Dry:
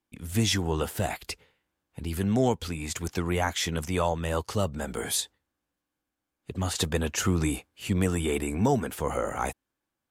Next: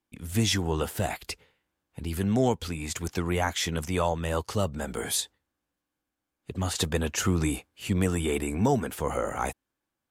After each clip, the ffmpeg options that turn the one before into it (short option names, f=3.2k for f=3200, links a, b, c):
-af anull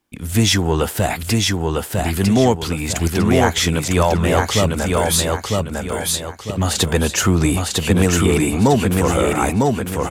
-filter_complex "[0:a]aecho=1:1:952|1904|2856|3808:0.708|0.241|0.0818|0.0278,asplit=2[a][b];[b]asoftclip=type=tanh:threshold=-25dB,volume=-5.5dB[c];[a][c]amix=inputs=2:normalize=0,volume=7.5dB"